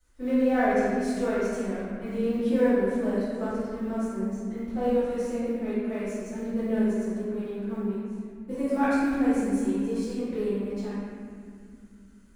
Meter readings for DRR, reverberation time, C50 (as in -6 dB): -18.5 dB, 2.3 s, -4.5 dB